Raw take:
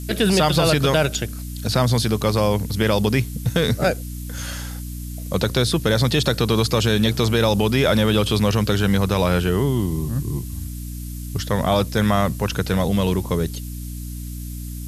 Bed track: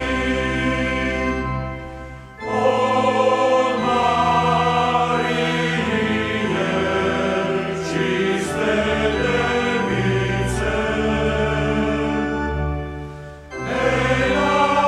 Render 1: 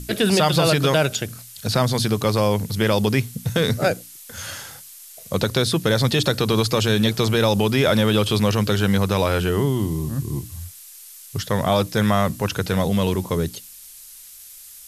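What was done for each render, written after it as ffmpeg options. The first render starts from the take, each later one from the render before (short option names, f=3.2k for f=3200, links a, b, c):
-af "bandreject=f=60:t=h:w=6,bandreject=f=120:t=h:w=6,bandreject=f=180:t=h:w=6,bandreject=f=240:t=h:w=6,bandreject=f=300:t=h:w=6"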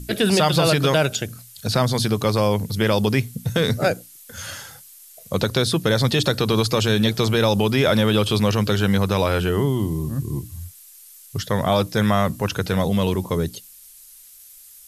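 -af "afftdn=nr=6:nf=-43"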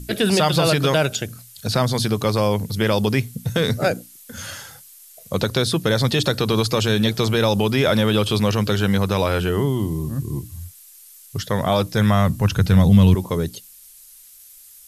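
-filter_complex "[0:a]asettb=1/sr,asplit=3[a][b][c];[a]atrim=end=3.934[d];[b]atrim=start=3.93:end=4.47,asetpts=PTS-STARTPTS,afade=t=in:d=0.004:c=qsin,afade=t=out:st=0.536:d=0.004:c=qsin,equalizer=f=240:w=1.5:g=10[e];[c]atrim=start=4.466[f];[d][e]acrossfade=d=0.004:c1=hsin:c2=qsin[g];[g][f]acrossfade=d=0.004:c1=qsin:c2=hsin,asettb=1/sr,asplit=3[h][i][j];[h]atrim=end=11.774[k];[i]atrim=start=11.77:end=13.15,asetpts=PTS-STARTPTS,afade=t=in:d=0.004:c=qsin,afade=t=out:st=1.376:d=0.004:c=qsin,asubboost=boost=11.5:cutoff=200[l];[j]atrim=start=13.146[m];[k][l]acrossfade=d=0.004:c1=hsin:c2=qsin[n];[n][m]acrossfade=d=0.004:c1=qsin:c2=hsin"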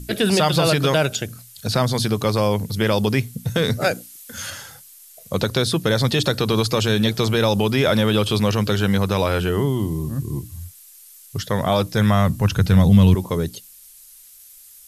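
-filter_complex "[0:a]asettb=1/sr,asplit=3[a][b][c];[a]atrim=end=3.814[d];[b]atrim=start=3.81:end=4.5,asetpts=PTS-STARTPTS,afade=t=in:d=0.004:c=qsin,afade=t=out:st=0.686:d=0.004:c=qsin,tiltshelf=f=750:g=-3.5[e];[c]atrim=start=4.496[f];[d][e]acrossfade=d=0.004:c1=hsin:c2=qsin[g];[g][f]acrossfade=d=0.004:c1=qsin:c2=hsin"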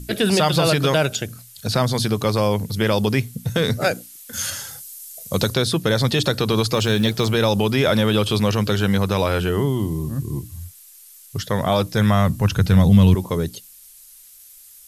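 -filter_complex "[0:a]asettb=1/sr,asplit=3[a][b][c];[a]atrim=end=4.334[d];[b]atrim=start=4.33:end=5.54,asetpts=PTS-STARTPTS,afade=t=in:d=0.004:c=qsin,afade=t=out:st=1.206:d=0.004:c=qsin,bass=f=250:g=2,treble=f=4k:g=8[e];[c]atrim=start=5.536[f];[d][e]acrossfade=d=0.004:c1=hsin:c2=qsin[g];[g][f]acrossfade=d=0.004:c1=qsin:c2=hsin,asettb=1/sr,asplit=3[h][i][j];[h]atrim=end=6.744[k];[i]atrim=start=6.74:end=7.3,asetpts=PTS-STARTPTS,afade=t=in:d=0.004:c=qsin,afade=t=out:st=0.556:d=0.004:c=qsin,acrusher=bits=8:mode=log:mix=0:aa=0.000001[l];[j]atrim=start=7.296[m];[k][l]acrossfade=d=0.004:c1=hsin:c2=qsin[n];[n][m]acrossfade=d=0.004:c1=qsin:c2=hsin"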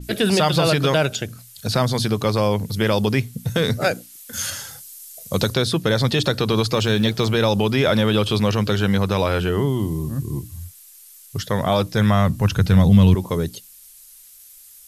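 -af "adynamicequalizer=threshold=0.01:dfrequency=6500:dqfactor=0.7:tfrequency=6500:tqfactor=0.7:attack=5:release=100:ratio=0.375:range=2.5:mode=cutabove:tftype=highshelf"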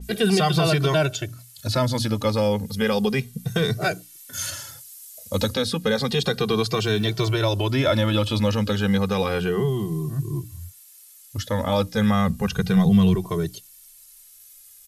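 -filter_complex "[0:a]asplit=2[a][b];[b]adelay=2.1,afreqshift=-0.32[c];[a][c]amix=inputs=2:normalize=1"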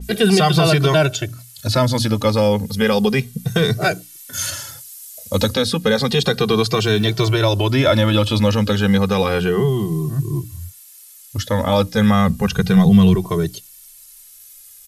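-af "volume=5.5dB"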